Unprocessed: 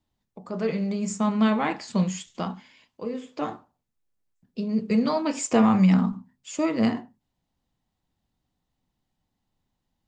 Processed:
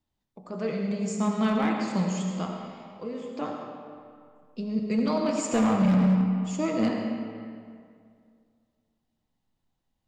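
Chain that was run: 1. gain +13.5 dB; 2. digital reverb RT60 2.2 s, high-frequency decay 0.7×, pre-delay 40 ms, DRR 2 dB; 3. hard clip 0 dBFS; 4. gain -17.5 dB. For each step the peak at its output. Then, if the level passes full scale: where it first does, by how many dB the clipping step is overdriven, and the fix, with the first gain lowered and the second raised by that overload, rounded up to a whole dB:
+4.5, +7.5, 0.0, -17.5 dBFS; step 1, 7.5 dB; step 1 +5.5 dB, step 4 -9.5 dB

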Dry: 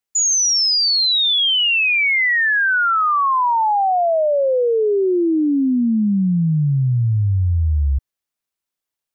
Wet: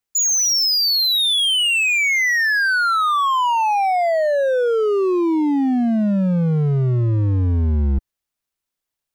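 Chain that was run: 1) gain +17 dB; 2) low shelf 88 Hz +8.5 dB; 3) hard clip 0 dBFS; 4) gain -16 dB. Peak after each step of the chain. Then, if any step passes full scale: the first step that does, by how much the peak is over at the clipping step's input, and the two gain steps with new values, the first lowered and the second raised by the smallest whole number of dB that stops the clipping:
+3.5, +9.0, 0.0, -16.0 dBFS; step 1, 9.0 dB; step 1 +8 dB, step 4 -7 dB

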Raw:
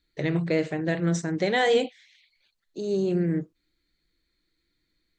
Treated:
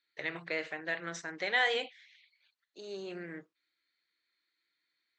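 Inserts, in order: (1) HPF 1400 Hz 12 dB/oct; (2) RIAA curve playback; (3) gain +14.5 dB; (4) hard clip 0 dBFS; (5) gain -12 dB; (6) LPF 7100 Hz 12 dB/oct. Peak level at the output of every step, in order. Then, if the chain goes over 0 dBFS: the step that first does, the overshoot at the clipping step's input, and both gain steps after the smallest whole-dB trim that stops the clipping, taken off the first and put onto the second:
-16.0, -19.0, -4.5, -4.5, -16.5, -16.5 dBFS; no overload

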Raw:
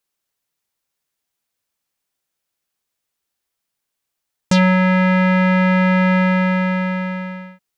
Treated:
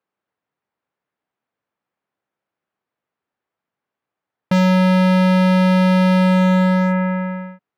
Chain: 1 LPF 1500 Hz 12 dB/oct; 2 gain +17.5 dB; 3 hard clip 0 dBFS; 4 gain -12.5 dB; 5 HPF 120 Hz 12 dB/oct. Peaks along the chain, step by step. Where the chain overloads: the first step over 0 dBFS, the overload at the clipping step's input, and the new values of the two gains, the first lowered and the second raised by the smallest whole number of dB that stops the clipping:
-8.5, +9.0, 0.0, -12.5, -6.0 dBFS; step 2, 9.0 dB; step 2 +8.5 dB, step 4 -3.5 dB

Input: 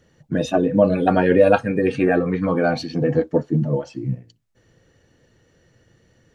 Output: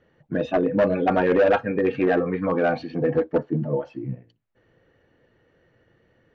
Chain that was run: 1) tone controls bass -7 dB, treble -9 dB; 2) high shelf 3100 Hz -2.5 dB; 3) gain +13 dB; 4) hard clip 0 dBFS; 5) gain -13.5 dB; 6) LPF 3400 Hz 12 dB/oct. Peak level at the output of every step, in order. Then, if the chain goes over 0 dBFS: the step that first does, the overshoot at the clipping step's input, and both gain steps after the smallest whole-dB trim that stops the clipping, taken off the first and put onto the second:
-2.5, -3.0, +10.0, 0.0, -13.5, -13.0 dBFS; step 3, 10.0 dB; step 3 +3 dB, step 5 -3.5 dB

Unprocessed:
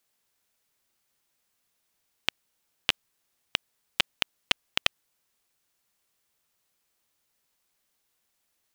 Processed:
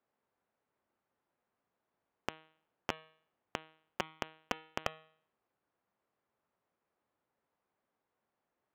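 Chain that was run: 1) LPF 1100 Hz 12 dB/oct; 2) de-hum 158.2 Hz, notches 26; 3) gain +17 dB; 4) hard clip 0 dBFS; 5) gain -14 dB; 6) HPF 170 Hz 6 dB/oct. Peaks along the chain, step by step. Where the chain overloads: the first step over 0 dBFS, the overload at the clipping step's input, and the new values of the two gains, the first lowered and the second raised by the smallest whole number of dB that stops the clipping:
-12.5, -13.0, +4.0, 0.0, -14.0, -14.5 dBFS; step 3, 4.0 dB; step 3 +13 dB, step 5 -10 dB

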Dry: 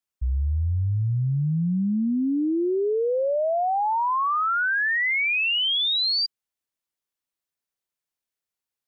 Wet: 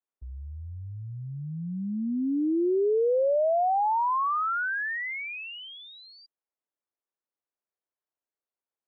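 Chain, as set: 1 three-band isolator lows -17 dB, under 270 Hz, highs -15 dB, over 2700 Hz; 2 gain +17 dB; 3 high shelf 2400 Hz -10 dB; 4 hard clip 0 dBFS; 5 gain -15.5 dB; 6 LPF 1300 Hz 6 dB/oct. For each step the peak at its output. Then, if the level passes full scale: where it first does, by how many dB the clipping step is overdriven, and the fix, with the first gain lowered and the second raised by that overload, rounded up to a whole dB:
-20.0, -3.0, -4.0, -4.0, -19.5, -20.0 dBFS; no overload

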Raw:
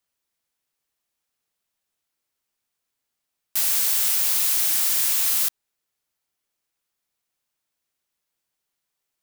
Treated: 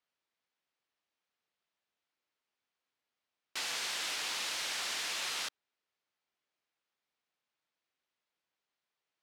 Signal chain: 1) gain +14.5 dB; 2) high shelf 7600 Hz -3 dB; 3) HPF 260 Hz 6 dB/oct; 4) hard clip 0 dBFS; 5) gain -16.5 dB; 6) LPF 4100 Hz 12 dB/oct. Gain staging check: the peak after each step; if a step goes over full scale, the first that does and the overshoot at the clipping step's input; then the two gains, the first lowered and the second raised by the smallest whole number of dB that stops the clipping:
+6.0, +3.5, +3.5, 0.0, -16.5, -24.0 dBFS; step 1, 3.5 dB; step 1 +10.5 dB, step 5 -12.5 dB

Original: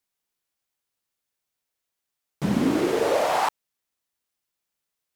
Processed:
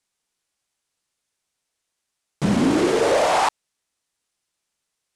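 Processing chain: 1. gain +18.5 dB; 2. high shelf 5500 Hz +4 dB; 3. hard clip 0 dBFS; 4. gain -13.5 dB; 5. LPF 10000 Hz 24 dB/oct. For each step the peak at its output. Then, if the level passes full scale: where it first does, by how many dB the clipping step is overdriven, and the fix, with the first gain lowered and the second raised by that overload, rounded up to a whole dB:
+8.0, +8.0, 0.0, -13.5, -12.5 dBFS; step 1, 8.0 dB; step 1 +10.5 dB, step 4 -5.5 dB

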